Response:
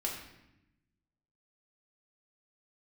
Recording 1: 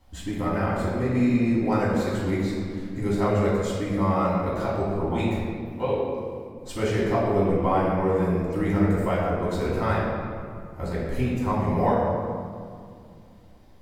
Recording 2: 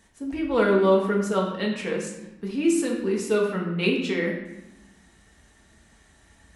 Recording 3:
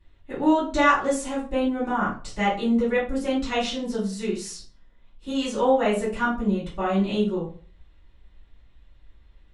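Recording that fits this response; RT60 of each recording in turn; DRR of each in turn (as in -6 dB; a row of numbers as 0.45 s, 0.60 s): 2; 2.2 s, 0.90 s, 0.40 s; -8.5 dB, -2.5 dB, -10.5 dB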